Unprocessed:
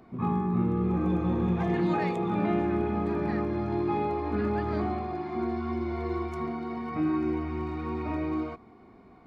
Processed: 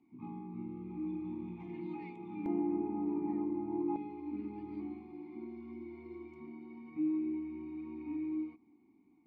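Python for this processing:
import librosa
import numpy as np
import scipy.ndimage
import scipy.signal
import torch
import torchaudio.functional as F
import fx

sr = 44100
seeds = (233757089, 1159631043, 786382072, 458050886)

y = fx.vowel_filter(x, sr, vowel='u')
y = fx.peak_eq(y, sr, hz=fx.steps((0.0, 680.0), (2.46, 4400.0), (3.96, 850.0)), db=-13.0, octaves=2.8)
y = y * librosa.db_to_amplitude(2.5)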